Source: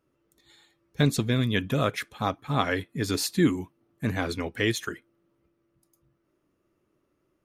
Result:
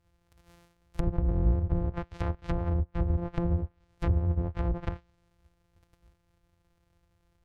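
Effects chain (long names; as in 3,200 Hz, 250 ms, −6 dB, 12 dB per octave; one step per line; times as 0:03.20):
samples sorted by size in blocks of 256 samples
brickwall limiter −20 dBFS, peak gain reduction 11.5 dB
low shelf with overshoot 120 Hz +13 dB, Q 1.5
treble cut that deepens with the level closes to 500 Hz, closed at −23 dBFS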